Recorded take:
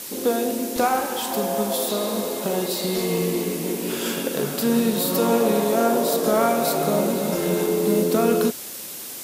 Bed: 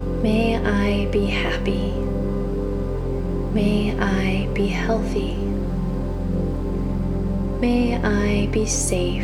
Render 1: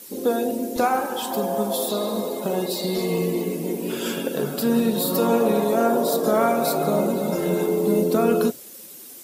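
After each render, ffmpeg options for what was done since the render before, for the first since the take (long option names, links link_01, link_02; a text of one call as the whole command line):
ffmpeg -i in.wav -af "afftdn=noise_reduction=11:noise_floor=-35" out.wav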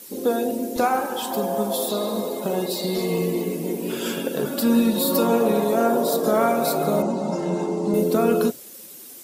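ffmpeg -i in.wav -filter_complex "[0:a]asettb=1/sr,asplit=3[link_01][link_02][link_03];[link_01]atrim=end=4.454[link_04];[link_02]atrim=start=4.45:end=5.23,asetpts=PTS-STARTPTS,afade=type=in:duration=0.004:curve=qsin,afade=type=out:start_time=0.776:duration=0.004:curve=qsin,aecho=1:1:3.5:0.65,atrim=end_sample=34398[link_05];[link_03]atrim=start=5.226[link_06];[link_04][link_05]acrossfade=duration=0.004:curve1=hsin:curve2=qsin[link_07];[link_07][link_06]acrossfade=duration=0.004:curve1=qsin:curve2=hsin,asettb=1/sr,asplit=3[link_08][link_09][link_10];[link_08]atrim=end=7.024[link_11];[link_09]atrim=start=7.02:end=7.94,asetpts=PTS-STARTPTS,afade=type=in:duration=0.004:curve=qsin,afade=type=out:start_time=0.916:duration=0.004:curve=qsin,highpass=110,equalizer=frequency=450:width_type=q:width=4:gain=-7,equalizer=frequency=880:width_type=q:width=4:gain=5,equalizer=frequency=1500:width_type=q:width=4:gain=-6,equalizer=frequency=2300:width_type=q:width=4:gain=-8,equalizer=frequency=3500:width_type=q:width=4:gain=-8,lowpass=frequency=7200:width=0.5412,lowpass=frequency=7200:width=1.3066[link_12];[link_10]atrim=start=7.936[link_13];[link_11][link_12]acrossfade=duration=0.004:curve1=hsin:curve2=qsin[link_14];[link_14][link_13]acrossfade=duration=0.004:curve1=qsin:curve2=hsin" out.wav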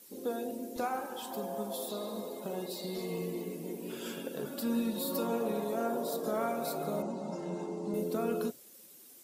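ffmpeg -i in.wav -af "volume=-13.5dB" out.wav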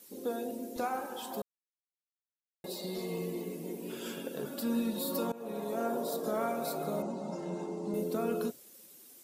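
ffmpeg -i in.wav -filter_complex "[0:a]asplit=4[link_01][link_02][link_03][link_04];[link_01]atrim=end=1.42,asetpts=PTS-STARTPTS,afade=type=out:start_time=1.416:duration=0.004:curve=hsin[link_05];[link_02]atrim=start=1.42:end=2.64,asetpts=PTS-STARTPTS,volume=0[link_06];[link_03]atrim=start=2.64:end=5.32,asetpts=PTS-STARTPTS,afade=type=in:duration=0.004:curve=hsin,afade=type=out:start_time=2.676:duration=0.004:curve=hsin:silence=0.0944061[link_07];[link_04]atrim=start=5.32,asetpts=PTS-STARTPTS,afade=type=in:duration=0.62:curve=qsin:silence=0.0944061[link_08];[link_05][link_06][link_07][link_08]concat=n=4:v=0:a=1" out.wav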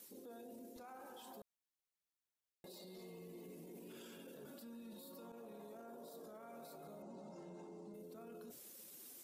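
ffmpeg -i in.wav -af "areverse,acompressor=threshold=-45dB:ratio=5,areverse,alimiter=level_in=22.5dB:limit=-24dB:level=0:latency=1:release=34,volume=-22.5dB" out.wav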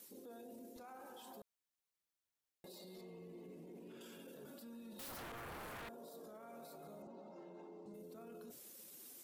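ffmpeg -i in.wav -filter_complex "[0:a]asettb=1/sr,asplit=3[link_01][link_02][link_03];[link_01]atrim=end=3.014[link_04];[link_02]atrim=start=3.01:end=4.01,asetpts=PTS-STARTPTS,afade=type=in:duration=0.004:curve=qsin,afade=type=out:start_time=0.996:duration=0.004:curve=qsin,lowpass=frequency=2400:poles=1[link_05];[link_03]atrim=start=4.006[link_06];[link_04][link_05]acrossfade=duration=0.004:curve1=hsin:curve2=qsin[link_07];[link_07][link_06]acrossfade=duration=0.004:curve1=qsin:curve2=hsin,asettb=1/sr,asplit=3[link_08][link_09][link_10];[link_08]atrim=end=4.994[link_11];[link_09]atrim=start=4.99:end=5.89,asetpts=PTS-STARTPTS,afade=type=in:duration=0.004:curve=qsin,afade=type=out:start_time=0.896:duration=0.004:curve=qsin,aeval=exprs='0.00501*sin(PI/2*3.55*val(0)/0.00501)':channel_layout=same[link_12];[link_10]atrim=start=5.886[link_13];[link_11][link_12]acrossfade=duration=0.004:curve1=hsin:curve2=qsin[link_14];[link_14][link_13]acrossfade=duration=0.004:curve1=qsin:curve2=hsin,asettb=1/sr,asplit=3[link_15][link_16][link_17];[link_15]atrim=end=7.074[link_18];[link_16]atrim=start=7.07:end=7.86,asetpts=PTS-STARTPTS,afade=type=in:duration=0.004:curve=qsin,afade=type=out:start_time=0.786:duration=0.004:curve=qsin,acrossover=split=190 4400:gain=0.0708 1 0.141[link_19][link_20][link_21];[link_19][link_20][link_21]amix=inputs=3:normalize=0[link_22];[link_17]atrim=start=7.856[link_23];[link_18][link_22]acrossfade=duration=0.004:curve1=hsin:curve2=qsin[link_24];[link_24][link_23]acrossfade=duration=0.004:curve1=qsin:curve2=hsin" out.wav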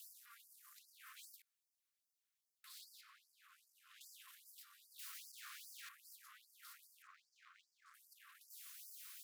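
ffmpeg -i in.wav -af "aeval=exprs='0.00562*(cos(1*acos(clip(val(0)/0.00562,-1,1)))-cos(1*PI/2))+0.00178*(cos(3*acos(clip(val(0)/0.00562,-1,1)))-cos(3*PI/2))+0.00251*(cos(4*acos(clip(val(0)/0.00562,-1,1)))-cos(4*PI/2))+0.00126*(cos(5*acos(clip(val(0)/0.00562,-1,1)))-cos(5*PI/2))':channel_layout=same,afftfilt=real='re*gte(b*sr/1024,990*pow(4700/990,0.5+0.5*sin(2*PI*2.5*pts/sr)))':imag='im*gte(b*sr/1024,990*pow(4700/990,0.5+0.5*sin(2*PI*2.5*pts/sr)))':win_size=1024:overlap=0.75" out.wav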